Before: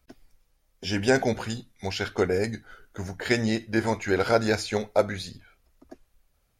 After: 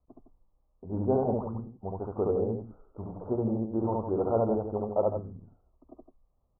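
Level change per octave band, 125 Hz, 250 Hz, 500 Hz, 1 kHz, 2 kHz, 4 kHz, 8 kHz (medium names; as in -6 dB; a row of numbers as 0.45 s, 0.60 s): -2.0 dB, -3.0 dB, -2.5 dB, -4.0 dB, under -35 dB, under -40 dB, under -40 dB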